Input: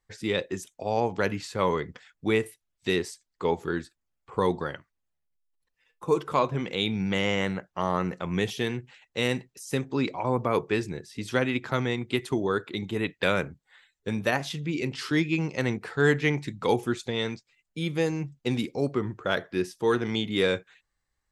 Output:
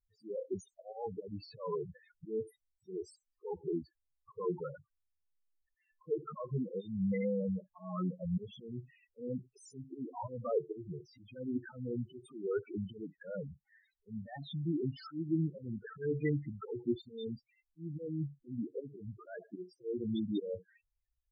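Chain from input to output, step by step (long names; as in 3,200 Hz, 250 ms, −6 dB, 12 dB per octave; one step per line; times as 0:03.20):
volume swells 251 ms
spectral peaks only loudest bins 4
level −3 dB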